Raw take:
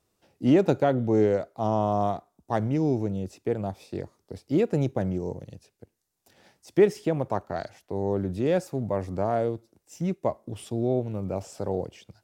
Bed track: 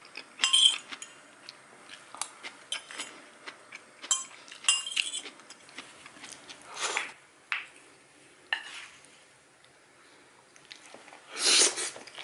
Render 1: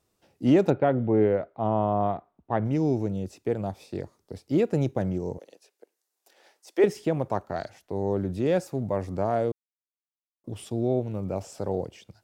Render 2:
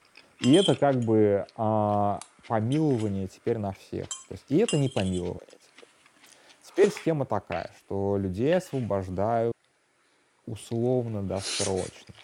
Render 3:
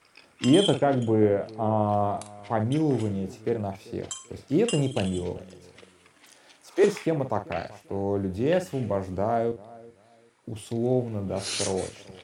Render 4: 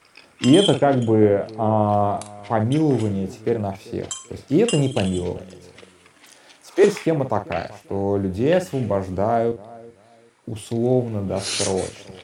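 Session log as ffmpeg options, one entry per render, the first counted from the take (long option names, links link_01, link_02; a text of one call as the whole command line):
ffmpeg -i in.wav -filter_complex "[0:a]asplit=3[link_01][link_02][link_03];[link_01]afade=type=out:start_time=0.69:duration=0.02[link_04];[link_02]lowpass=frequency=2900:width=0.5412,lowpass=frequency=2900:width=1.3066,afade=type=in:start_time=0.69:duration=0.02,afade=type=out:start_time=2.64:duration=0.02[link_05];[link_03]afade=type=in:start_time=2.64:duration=0.02[link_06];[link_04][link_05][link_06]amix=inputs=3:normalize=0,asettb=1/sr,asplit=3[link_07][link_08][link_09];[link_07]atrim=end=5.384[link_10];[link_08]atrim=start=5.38:end=6.84,asetpts=PTS-STARTPTS,afade=type=in:duration=0.004:curve=qsin,afade=type=out:start_time=1.456:duration=0.004:curve=qsin,highpass=frequency=370:width=0.5412,highpass=frequency=370:width=1.3066[link_11];[link_09]atrim=start=6.836[link_12];[link_10][link_11]acrossfade=duration=0.004:curve1=hsin:curve2=qsin[link_13];[link_13][link_12]acrossfade=duration=0.004:curve1=qsin:curve2=hsin,asplit=3[link_14][link_15][link_16];[link_14]atrim=end=9.52,asetpts=PTS-STARTPTS,afade=type=out:start_time=9.516:duration=0.004:curve=hsin[link_17];[link_15]atrim=start=9.52:end=10.44,asetpts=PTS-STARTPTS,volume=0[link_18];[link_16]atrim=start=10.44,asetpts=PTS-STARTPTS,afade=type=in:duration=0.004:curve=hsin[link_19];[link_17][link_18][link_19]concat=n=3:v=0:a=1" out.wav
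ffmpeg -i in.wav -i bed.wav -filter_complex "[1:a]volume=-9dB[link_01];[0:a][link_01]amix=inputs=2:normalize=0" out.wav
ffmpeg -i in.wav -filter_complex "[0:a]asplit=2[link_01][link_02];[link_02]adelay=47,volume=-10dB[link_03];[link_01][link_03]amix=inputs=2:normalize=0,asplit=2[link_04][link_05];[link_05]adelay=389,lowpass=frequency=2000:poles=1,volume=-20.5dB,asplit=2[link_06][link_07];[link_07]adelay=389,lowpass=frequency=2000:poles=1,volume=0.26[link_08];[link_04][link_06][link_08]amix=inputs=3:normalize=0" out.wav
ffmpeg -i in.wav -af "volume=5.5dB,alimiter=limit=-3dB:level=0:latency=1" out.wav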